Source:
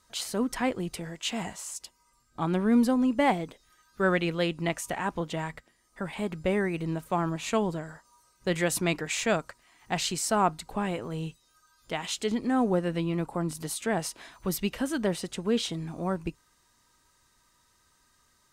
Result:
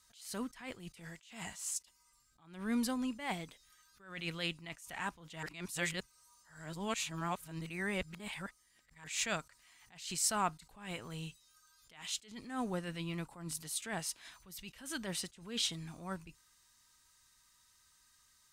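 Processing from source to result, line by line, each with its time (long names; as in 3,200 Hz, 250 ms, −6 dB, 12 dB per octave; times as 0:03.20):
0:05.43–0:09.04: reverse
whole clip: guitar amp tone stack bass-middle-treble 5-5-5; level that may rise only so fast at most 110 dB per second; level +6.5 dB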